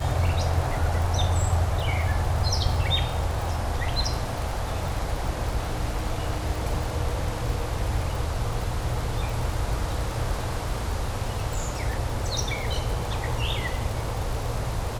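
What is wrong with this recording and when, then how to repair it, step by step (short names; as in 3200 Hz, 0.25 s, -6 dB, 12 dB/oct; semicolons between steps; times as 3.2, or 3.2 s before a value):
crackle 47/s -29 dBFS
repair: de-click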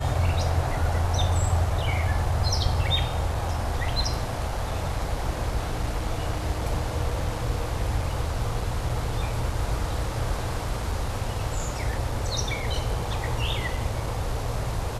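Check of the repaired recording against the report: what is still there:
none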